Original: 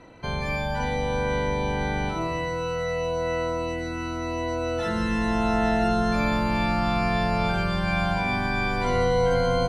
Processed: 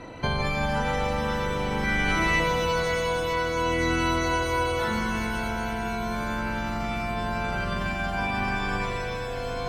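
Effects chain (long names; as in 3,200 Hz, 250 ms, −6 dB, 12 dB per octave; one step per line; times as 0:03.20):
0:01.84–0:02.40: octave-band graphic EQ 125/500/1,000/2,000/4,000/8,000 Hz −10/−12/−6/+8/−5/+4 dB
compressor whose output falls as the input rises −31 dBFS, ratio −1
reverb with rising layers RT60 2.9 s, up +7 semitones, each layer −2 dB, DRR 5.5 dB
level +2 dB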